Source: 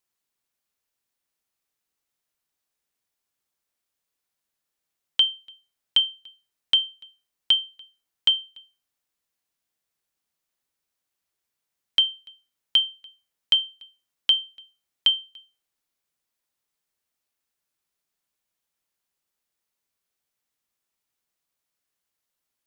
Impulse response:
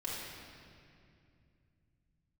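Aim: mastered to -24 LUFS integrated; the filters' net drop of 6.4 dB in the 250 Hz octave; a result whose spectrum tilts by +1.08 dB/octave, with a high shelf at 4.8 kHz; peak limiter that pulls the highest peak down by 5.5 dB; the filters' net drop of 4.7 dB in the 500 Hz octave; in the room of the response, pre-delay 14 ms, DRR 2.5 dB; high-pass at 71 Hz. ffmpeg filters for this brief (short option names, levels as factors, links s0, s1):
-filter_complex "[0:a]highpass=71,equalizer=f=250:t=o:g=-7.5,equalizer=f=500:t=o:g=-4,highshelf=f=4800:g=-8,alimiter=limit=0.15:level=0:latency=1,asplit=2[s0][s1];[1:a]atrim=start_sample=2205,adelay=14[s2];[s1][s2]afir=irnorm=-1:irlink=0,volume=0.531[s3];[s0][s3]amix=inputs=2:normalize=0,volume=1.19"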